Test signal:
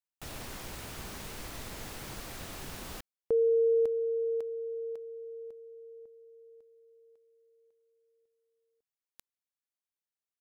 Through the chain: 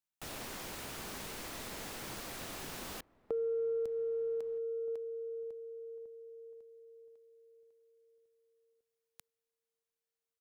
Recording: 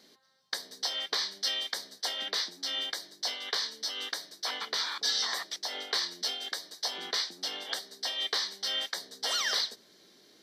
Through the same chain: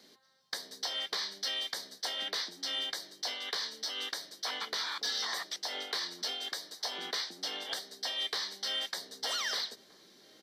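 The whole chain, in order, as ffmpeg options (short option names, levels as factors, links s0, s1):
-filter_complex "[0:a]acrossover=split=170|3200[s0][s1][s2];[s0]acompressor=threshold=0.002:ratio=4[s3];[s1]acompressor=threshold=0.02:ratio=4[s4];[s2]acompressor=threshold=0.0178:ratio=4[s5];[s3][s4][s5]amix=inputs=3:normalize=0,asoftclip=type=tanh:threshold=0.0668,asplit=2[s6][s7];[s7]adelay=1574,volume=0.0891,highshelf=f=4000:g=-35.4[s8];[s6][s8]amix=inputs=2:normalize=0"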